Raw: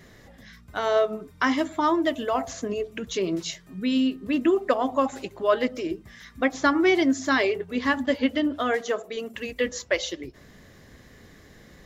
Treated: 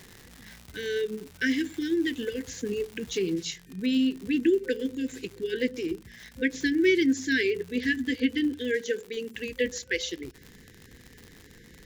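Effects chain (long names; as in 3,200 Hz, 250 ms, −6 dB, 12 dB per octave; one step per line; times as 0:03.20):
brick-wall band-stop 520–1,500 Hz
surface crackle 340 per second −34 dBFS, from 0:03.34 110 per second
level −1.5 dB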